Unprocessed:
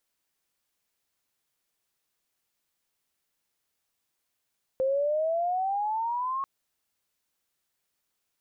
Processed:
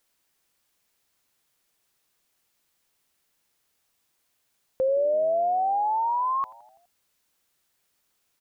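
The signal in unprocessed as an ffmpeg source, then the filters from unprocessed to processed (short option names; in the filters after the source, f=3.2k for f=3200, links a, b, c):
-f lavfi -i "aevalsrc='pow(10,(-22.5-5*t/1.64)/20)*sin(2*PI*520*1.64/log(1100/520)*(exp(log(1100/520)*t/1.64)-1))':d=1.64:s=44100"
-filter_complex "[0:a]asplit=2[a][b];[b]alimiter=level_in=7dB:limit=-24dB:level=0:latency=1,volume=-7dB,volume=1.5dB[c];[a][c]amix=inputs=2:normalize=0,asplit=6[d][e][f][g][h][i];[e]adelay=83,afreqshift=-77,volume=-22dB[j];[f]adelay=166,afreqshift=-154,volume=-26dB[k];[g]adelay=249,afreqshift=-231,volume=-30dB[l];[h]adelay=332,afreqshift=-308,volume=-34dB[m];[i]adelay=415,afreqshift=-385,volume=-38.1dB[n];[d][j][k][l][m][n]amix=inputs=6:normalize=0"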